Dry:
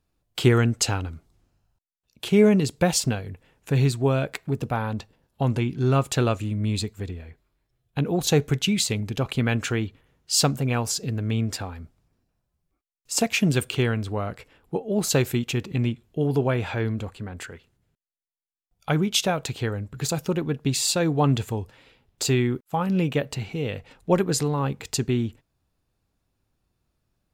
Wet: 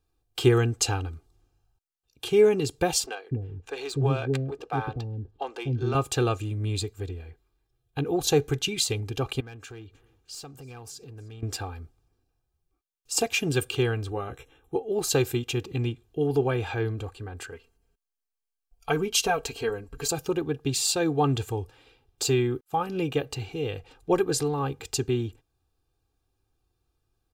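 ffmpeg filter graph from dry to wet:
-filter_complex "[0:a]asettb=1/sr,asplit=3[a][b][c];[a]atrim=end=3.064[d];[b]atrim=start=3.06:end=5.95,asetpts=PTS-STARTPTS,afade=t=in:d=0.004:c=qsin,afade=t=out:st=2.886:d=0.004:c=qsin,adynamicsmooth=sensitivity=5.5:basefreq=4.8k,acrossover=split=410[e][f];[e]adelay=250[g];[g][f]amix=inputs=2:normalize=0,atrim=end_sample=127449[h];[c]atrim=start=5.946[i];[d][h]acrossfade=d=0.004:c1=hsin:c2=qsin[j];[j][i]acrossfade=d=0.004:c1=qsin:c2=hsin,asettb=1/sr,asplit=3[k][l][m];[k]atrim=end=9.404[n];[l]atrim=start=9.4:end=11.43,asetpts=PTS-STARTPTS,afade=t=in:d=0.004:c=qsin,afade=t=out:st=2.026:d=0.004:c=qsin,acompressor=threshold=-42dB:ratio=3:attack=3.2:release=140:knee=1:detection=peak,aeval=exprs='clip(val(0),-1,0.02)':c=same,aecho=1:1:307|614:0.0631|0.0233,atrim=end_sample=89523[o];[m]atrim=start=11.426[p];[n][o]acrossfade=d=0.004:c1=hsin:c2=qsin[q];[q][p]acrossfade=d=0.004:c1=qsin:c2=hsin,asettb=1/sr,asplit=3[r][s][t];[r]atrim=end=14.104[u];[s]atrim=start=14.1:end=14.76,asetpts=PTS-STARTPTS,afade=t=in:d=0.004:c=qsin,afade=t=out:st=0.656:d=0.004:c=qsin,asuperstop=centerf=4700:order=20:qfactor=3.6,equalizer=f=1.1k:t=o:w=1.6:g=-2.5,asplit=2[v][w];[w]adelay=15,volume=-6dB[x];[v][x]amix=inputs=2:normalize=0,atrim=end_sample=29106[y];[t]atrim=start=14.756[z];[u][y]acrossfade=d=0.004:c1=hsin:c2=qsin[aa];[aa][z]acrossfade=d=0.004:c1=qsin:c2=hsin,asettb=1/sr,asplit=3[ab][ac][ad];[ab]atrim=end=17.524[ae];[ac]atrim=start=17.52:end=20.12,asetpts=PTS-STARTPTS,afade=t=in:d=0.004:c=qsin,afade=t=out:st=2.596:d=0.004:c=qsin,asubboost=boost=5.5:cutoff=53,bandreject=f=3.6k:w=11,aecho=1:1:4.4:0.77,atrim=end_sample=114660[af];[ad]atrim=start=20.116[ag];[ae][af]acrossfade=d=0.004:c1=hsin:c2=qsin[ah];[ah][ag]acrossfade=d=0.004:c1=qsin:c2=hsin,equalizer=f=2k:w=7:g=-8.5,aecho=1:1:2.5:0.71,volume=-3.5dB"

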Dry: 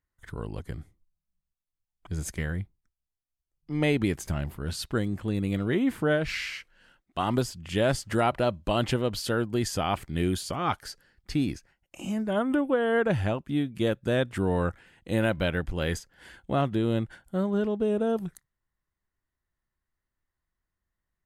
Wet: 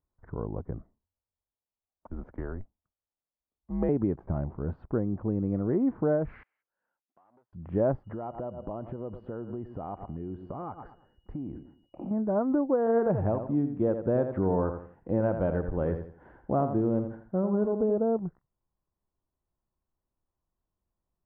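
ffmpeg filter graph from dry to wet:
-filter_complex "[0:a]asettb=1/sr,asplit=3[a][b][c];[a]atrim=end=0.784[d];[b]atrim=start=0.78:end=3.89,asetpts=PTS-STARTPTS,afade=t=in:d=0.004:c=qsin,afade=t=out:st=3.106:d=0.004:c=qsin,highpass=f=210:p=1,afreqshift=-100[e];[c]atrim=start=3.886[f];[d][e]acrossfade=d=0.004:c1=hsin:c2=qsin[g];[g][f]acrossfade=d=0.004:c1=qsin:c2=hsin,asettb=1/sr,asplit=3[h][i][j];[h]atrim=end=6.434[k];[i]atrim=start=6.43:end=7.53,asetpts=PTS-STARTPTS,afade=t=in:d=0.004:c=qsin,afade=t=out:st=1.096:d=0.004:c=qsin,aeval=exprs='(tanh(31.6*val(0)+0.25)-tanh(0.25))/31.6':c=same,aderivative,acompressor=threshold=-58dB:ratio=4:attack=3.2:release=140:knee=1:detection=peak[l];[j]atrim=start=7.526[m];[k][l]acrossfade=d=0.004:c1=hsin:c2=qsin[n];[n][m]acrossfade=d=0.004:c1=qsin:c2=hsin,asettb=1/sr,asplit=3[o][p][q];[o]atrim=end=8.044[r];[p]atrim=start=8.04:end=12.11,asetpts=PTS-STARTPTS,afade=t=in:d=0.004:c=qsin,afade=t=out:st=4.066:d=0.004:c=qsin,asplit=2[s][t];[t]adelay=110,lowpass=f=2.2k:p=1,volume=-18dB,asplit=2[u][v];[v]adelay=110,lowpass=f=2.2k:p=1,volume=0.31,asplit=2[w][x];[x]adelay=110,lowpass=f=2.2k:p=1,volume=0.31[y];[s][u][w][y]amix=inputs=4:normalize=0,atrim=end_sample=179487,acompressor=threshold=-34dB:ratio=10:attack=3.2:release=140:knee=1:detection=peak,aeval=exprs='val(0)+0.00631*sin(2*PI*2900*n/s)':c=same[z];[q]atrim=start=12.106[aa];[r][z]acrossfade=d=0.004:c1=hsin:c2=qsin[ab];[ab][aa]acrossfade=d=0.004:c1=qsin:c2=hsin,asettb=1/sr,asplit=3[ac][ad][ae];[ac]atrim=end=12.784[af];[ad]atrim=start=12.78:end=17.98,asetpts=PTS-STARTPTS,afade=t=in:d=0.004:c=qsin,afade=t=out:st=5.196:d=0.004:c=qsin,highshelf=f=3.5k:g=10.5,aecho=1:1:83|166|249:0.355|0.106|0.0319,atrim=end_sample=229320[ag];[ae]atrim=start=17.976[ah];[af][ag]acrossfade=d=0.004:c1=hsin:c2=qsin[ai];[ai][ah]acrossfade=d=0.004:c1=qsin:c2=hsin,lowpass=f=1k:w=0.5412,lowpass=f=1k:w=1.3066,lowshelf=f=160:g=-5,acompressor=threshold=-32dB:ratio=1.5,volume=4dB"

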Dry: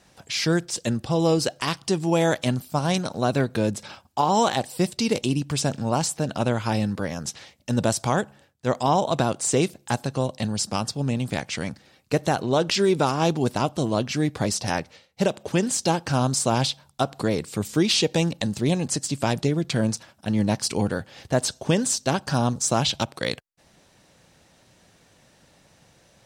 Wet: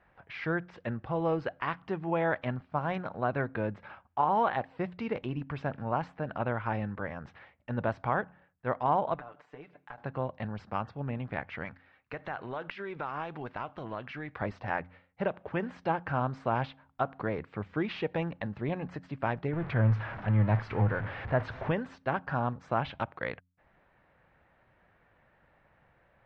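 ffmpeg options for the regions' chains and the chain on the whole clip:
-filter_complex "[0:a]asettb=1/sr,asplit=3[a][b][c];[a]atrim=end=9.144[d];[b]atrim=start=9.14:end=9.98,asetpts=PTS-STARTPTS,afade=t=in:d=0.004:c=qsin,afade=t=out:st=0.836:d=0.004:c=qsin,lowshelf=f=170:g=-11.5,acompressor=threshold=-35dB:ratio=12:attack=3.2:release=140:knee=1:detection=peak,aecho=1:1:6.8:0.75,atrim=end_sample=37044[e];[c]atrim=start=9.976[f];[d][e]acrossfade=d=0.004:c1=hsin:c2=qsin[g];[g][f]acrossfade=d=0.004:c1=qsin:c2=hsin,asettb=1/sr,asplit=3[h][i][j];[h]atrim=end=11.654[k];[i]atrim=start=11.65:end=14.42,asetpts=PTS-STARTPTS,afade=t=in:d=0.004:c=qsin,afade=t=out:st=2.766:d=0.004:c=qsin,tiltshelf=f=1.1k:g=-5.5,acompressor=threshold=-24dB:ratio=10:attack=3.2:release=140:knee=1:detection=peak[l];[j]atrim=start=14.416[m];[k][l]acrossfade=d=0.004:c1=hsin:c2=qsin[n];[n][m]acrossfade=d=0.004:c1=qsin:c2=hsin,asettb=1/sr,asplit=3[o][p][q];[o]atrim=end=19.534[r];[p]atrim=start=19.53:end=21.72,asetpts=PTS-STARTPTS,afade=t=in:d=0.004:c=qsin,afade=t=out:st=2.186:d=0.004:c=qsin,aeval=exprs='val(0)+0.5*0.0422*sgn(val(0))':c=same,equalizer=f=110:t=o:w=0.27:g=12.5[s];[q]atrim=start=21.716[t];[r][s]acrossfade=d=0.004:c1=hsin:c2=qsin[u];[u][t]acrossfade=d=0.004:c1=qsin:c2=hsin,lowpass=f=1.9k:w=0.5412,lowpass=f=1.9k:w=1.3066,equalizer=f=230:w=0.34:g=-11.5,bandreject=f=89.27:t=h:w=4,bandreject=f=178.54:t=h:w=4,bandreject=f=267.81:t=h:w=4"

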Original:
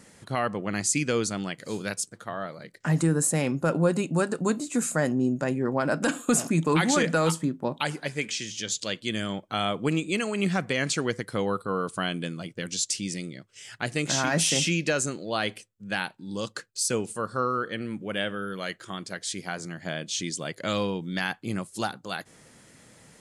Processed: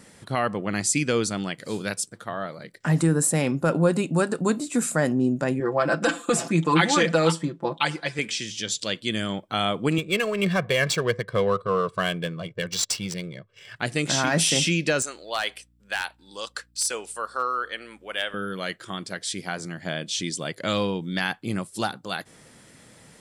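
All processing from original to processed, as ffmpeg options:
-filter_complex "[0:a]asettb=1/sr,asplit=3[a][b][c];[a]atrim=end=5.604[d];[b]atrim=start=5.6:end=8.19,asetpts=PTS-STARTPTS,afade=t=in:d=0.004:c=qsin,afade=t=out:st=2.586:d=0.004:c=qsin,lowpass=6.7k,lowshelf=f=210:g=-9,aecho=1:1:5.9:0.81,atrim=end_sample=114219[e];[c]atrim=start=8.186[f];[d][e]acrossfade=d=0.004:c1=hsin:c2=qsin[g];[g][f]acrossfade=d=0.004:c1=qsin:c2=hsin,asettb=1/sr,asplit=3[h][i][j];[h]atrim=end=9.984[k];[i]atrim=start=9.98:end=13.76,asetpts=PTS-STARTPTS,afade=t=in:d=0.004:c=qsin,afade=t=out:st=3.776:d=0.004:c=qsin,aecho=1:1:1.8:0.75,atrim=end_sample=166698,adynamicsmooth=sensitivity=7:basefreq=2.1k[l];[j]atrim=start=13.756[m];[k][l]acrossfade=d=0.004:c1=hsin:c2=qsin[n];[n][m]acrossfade=d=0.004:c1=qsin:c2=hsin,asettb=1/sr,asplit=3[o][p][q];[o]atrim=end=15.024[r];[p]atrim=start=15.02:end=18.34,asetpts=PTS-STARTPTS,afade=t=in:d=0.004:c=qsin,afade=t=out:st=3.316:d=0.004:c=qsin,highpass=670,aeval=exprs='0.126*(abs(mod(val(0)/0.126+3,4)-2)-1)':c=same,aeval=exprs='val(0)+0.000631*(sin(2*PI*60*n/s)+sin(2*PI*2*60*n/s)/2+sin(2*PI*3*60*n/s)/3+sin(2*PI*4*60*n/s)/4+sin(2*PI*5*60*n/s)/5)':c=same[s];[q]atrim=start=18.336[t];[r][s]acrossfade=d=0.004:c1=hsin:c2=qsin[u];[u][t]acrossfade=d=0.004:c1=qsin:c2=hsin,equalizer=f=3.5k:w=7.6:g=2.5,bandreject=f=6.6k:w=12,volume=2.5dB"

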